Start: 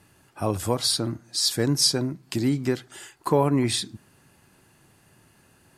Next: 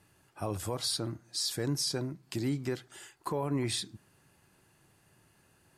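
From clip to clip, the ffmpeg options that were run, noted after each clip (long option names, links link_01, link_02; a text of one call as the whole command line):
ffmpeg -i in.wav -af "equalizer=frequency=240:width=5:gain=-5,alimiter=limit=-15.5dB:level=0:latency=1:release=21,volume=-7dB" out.wav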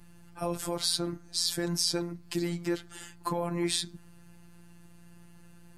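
ffmpeg -i in.wav -af "aeval=exprs='val(0)+0.002*(sin(2*PI*60*n/s)+sin(2*PI*2*60*n/s)/2+sin(2*PI*3*60*n/s)/3+sin(2*PI*4*60*n/s)/4+sin(2*PI*5*60*n/s)/5)':channel_layout=same,afreqshift=-17,afftfilt=real='hypot(re,im)*cos(PI*b)':imag='0':win_size=1024:overlap=0.75,volume=7dB" out.wav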